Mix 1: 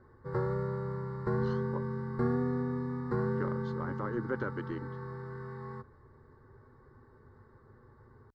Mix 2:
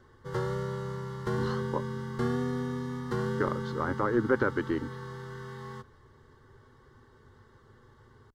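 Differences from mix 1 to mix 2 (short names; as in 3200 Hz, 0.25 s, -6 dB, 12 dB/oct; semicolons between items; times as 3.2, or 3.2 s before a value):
speech +9.0 dB; background: remove running mean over 14 samples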